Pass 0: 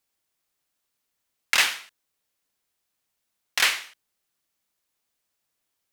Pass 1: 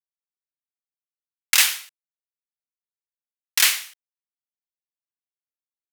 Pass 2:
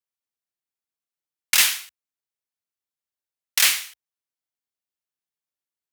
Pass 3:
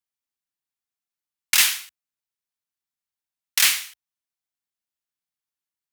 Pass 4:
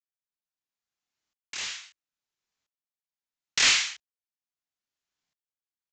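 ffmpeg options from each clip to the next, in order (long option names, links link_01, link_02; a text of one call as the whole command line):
ffmpeg -i in.wav -af "highpass=frequency=640:poles=1,aemphasis=mode=production:type=75kf,anlmdn=0.00398,volume=-2.5dB" out.wav
ffmpeg -i in.wav -af "acontrast=81,acrusher=bits=5:mode=log:mix=0:aa=0.000001,afreqshift=55,volume=-5.5dB" out.wav
ffmpeg -i in.wav -af "equalizer=frequency=490:width_type=o:width=0.63:gain=-9.5" out.wav
ffmpeg -i in.wav -filter_complex "[0:a]asplit=2[link_01][link_02];[link_02]adelay=30,volume=-3dB[link_03];[link_01][link_03]amix=inputs=2:normalize=0,aresample=16000,asoftclip=type=tanh:threshold=-17.5dB,aresample=44100,aeval=exprs='val(0)*pow(10,-26*if(lt(mod(-0.75*n/s,1),2*abs(-0.75)/1000),1-mod(-0.75*n/s,1)/(2*abs(-0.75)/1000),(mod(-0.75*n/s,1)-2*abs(-0.75)/1000)/(1-2*abs(-0.75)/1000))/20)':channel_layout=same,volume=8.5dB" out.wav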